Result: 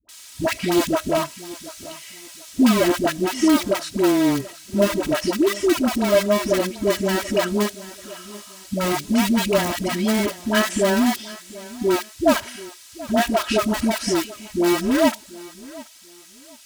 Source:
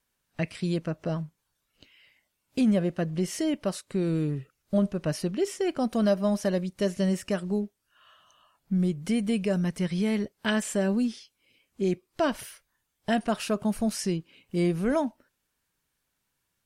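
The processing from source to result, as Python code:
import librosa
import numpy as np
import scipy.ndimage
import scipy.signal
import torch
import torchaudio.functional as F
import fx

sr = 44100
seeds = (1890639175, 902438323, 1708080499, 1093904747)

p1 = fx.dmg_noise_colour(x, sr, seeds[0], colour='violet', level_db=-40.0)
p2 = fx.air_absorb(p1, sr, metres=78.0)
p3 = (np.mod(10.0 ** (22.5 / 20.0) * p2 + 1.0, 2.0) - 1.0) / 10.0 ** (22.5 / 20.0)
p4 = p2 + (p3 * 10.0 ** (-4.5 / 20.0))
p5 = p4 + 0.83 * np.pad(p4, (int(3.1 * sr / 1000.0), 0))[:len(p4)]
p6 = p5 + fx.echo_feedback(p5, sr, ms=735, feedback_pct=29, wet_db=-18.5, dry=0)
p7 = fx.rider(p6, sr, range_db=10, speed_s=2.0)
p8 = scipy.signal.sosfilt(scipy.signal.butter(2, 47.0, 'highpass', fs=sr, output='sos'), p7)
p9 = fx.dispersion(p8, sr, late='highs', ms=89.0, hz=520.0)
y = p9 * 10.0 ** (5.0 / 20.0)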